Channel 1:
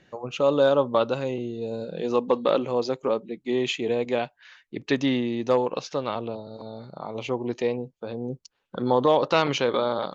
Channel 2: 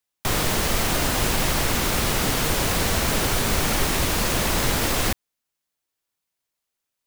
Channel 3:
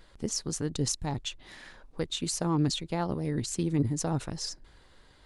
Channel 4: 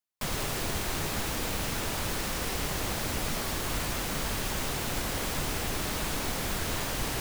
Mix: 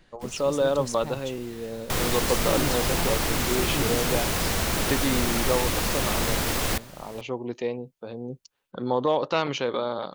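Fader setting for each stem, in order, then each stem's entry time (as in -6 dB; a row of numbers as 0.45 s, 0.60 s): -3.5 dB, -3.5 dB, -5.0 dB, -15.0 dB; 0.00 s, 1.65 s, 0.00 s, 0.00 s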